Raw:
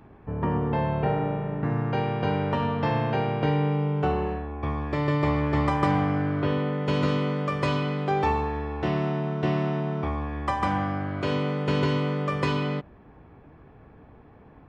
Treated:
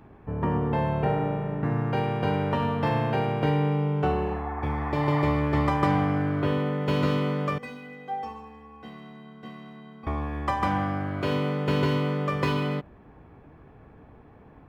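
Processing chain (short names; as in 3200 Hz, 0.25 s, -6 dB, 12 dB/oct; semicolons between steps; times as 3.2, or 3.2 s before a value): median filter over 5 samples; 4.29–5.21 spectral repair 650–2200 Hz both; 7.58–10.07 metallic resonator 230 Hz, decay 0.23 s, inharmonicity 0.03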